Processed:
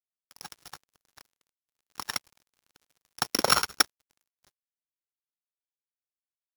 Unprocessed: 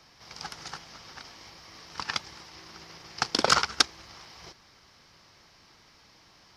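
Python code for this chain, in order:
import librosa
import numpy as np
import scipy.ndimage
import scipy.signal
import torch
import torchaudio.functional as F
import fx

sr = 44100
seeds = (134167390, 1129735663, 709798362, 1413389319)

y = np.r_[np.sort(x[:len(x) // 8 * 8].reshape(-1, 8), axis=1).ravel(), x[len(x) // 8 * 8:]]
y = np.sign(y) * np.maximum(np.abs(y) - 10.0 ** (-39.5 / 20.0), 0.0)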